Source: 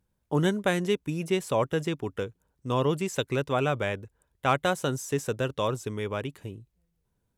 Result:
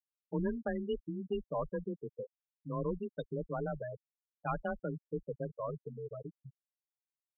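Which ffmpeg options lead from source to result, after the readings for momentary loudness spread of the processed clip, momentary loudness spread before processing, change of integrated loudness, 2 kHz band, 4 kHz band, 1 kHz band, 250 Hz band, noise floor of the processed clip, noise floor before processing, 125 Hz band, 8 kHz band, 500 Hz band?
11 LU, 11 LU, -10.5 dB, -16.0 dB, under -20 dB, -12.5 dB, -9.0 dB, under -85 dBFS, -77 dBFS, -11.5 dB, under -40 dB, -10.0 dB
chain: -af "aeval=exprs='(tanh(7.08*val(0)+0.5)-tanh(0.5))/7.08':c=same,afreqshift=24,afftfilt=real='re*gte(hypot(re,im),0.1)':imag='im*gte(hypot(re,im),0.1)':win_size=1024:overlap=0.75,volume=-6.5dB"

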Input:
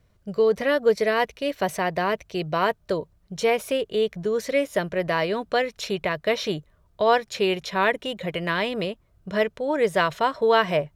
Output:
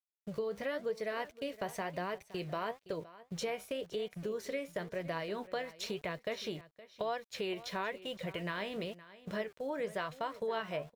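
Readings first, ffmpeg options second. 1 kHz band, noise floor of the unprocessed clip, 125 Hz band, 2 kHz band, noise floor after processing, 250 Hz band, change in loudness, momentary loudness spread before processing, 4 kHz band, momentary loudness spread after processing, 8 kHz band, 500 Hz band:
-15.5 dB, -63 dBFS, -12.0 dB, -15.0 dB, -73 dBFS, -13.0 dB, -15.0 dB, 9 LU, -13.5 dB, 5 LU, -11.0 dB, -15.0 dB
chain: -filter_complex "[0:a]flanger=delay=5.7:depth=9.3:regen=64:speed=0.98:shape=sinusoidal,aeval=exprs='val(0)*gte(abs(val(0)),0.00422)':c=same,acompressor=threshold=-35dB:ratio=3,agate=range=-9dB:threshold=-45dB:ratio=16:detection=peak,asplit=2[a][b];[b]aecho=0:1:517:0.133[c];[a][c]amix=inputs=2:normalize=0,volume=-2dB"

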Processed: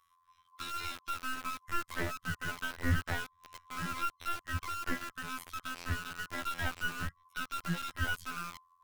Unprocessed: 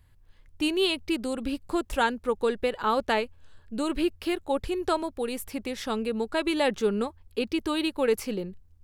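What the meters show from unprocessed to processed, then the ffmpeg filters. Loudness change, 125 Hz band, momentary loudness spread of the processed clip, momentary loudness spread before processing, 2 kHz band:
-9.5 dB, +5.5 dB, 6 LU, 8 LU, -2.0 dB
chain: -filter_complex "[0:a]afftfilt=real='real(if(lt(b,960),b+48*(1-2*mod(floor(b/48),2)),b),0)':imag='imag(if(lt(b,960),b+48*(1-2*mod(floor(b/48),2)),b),0)':win_size=2048:overlap=0.75,afftfilt=real='hypot(re,im)*cos(PI*b)':imag='0':win_size=2048:overlap=0.75,asubboost=boost=3.5:cutoff=170,acrossover=split=170|1400[a][b][c];[b]acrusher=bits=4:dc=4:mix=0:aa=0.000001[d];[c]acompressor=threshold=-46dB:ratio=4[e];[a][d][e]amix=inputs=3:normalize=0"

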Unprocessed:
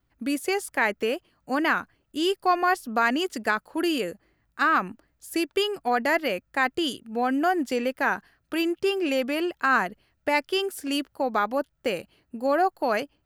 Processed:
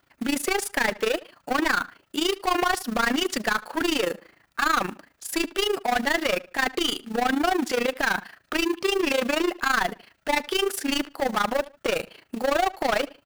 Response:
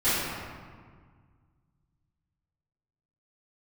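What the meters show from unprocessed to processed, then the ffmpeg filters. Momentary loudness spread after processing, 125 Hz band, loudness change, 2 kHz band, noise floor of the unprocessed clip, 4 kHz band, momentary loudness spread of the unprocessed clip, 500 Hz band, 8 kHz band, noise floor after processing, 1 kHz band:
6 LU, +3.0 dB, +0.5 dB, +1.0 dB, -72 dBFS, +4.5 dB, 8 LU, +0.5 dB, +8.0 dB, -66 dBFS, -0.5 dB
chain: -filter_complex "[0:a]asplit=2[a][b];[b]highpass=f=720:p=1,volume=29dB,asoftclip=type=tanh:threshold=-9dB[c];[a][c]amix=inputs=2:normalize=0,lowpass=f=5.2k:p=1,volume=-6dB,acrusher=bits=4:mode=log:mix=0:aa=0.000001,asplit=2[d][e];[e]adelay=77,lowpass=f=4.4k:p=1,volume=-19.5dB,asplit=2[f][g];[g]adelay=77,lowpass=f=4.4k:p=1,volume=0.29[h];[f][h]amix=inputs=2:normalize=0[i];[d][i]amix=inputs=2:normalize=0,tremolo=f=27:d=0.824,volume=-4dB"

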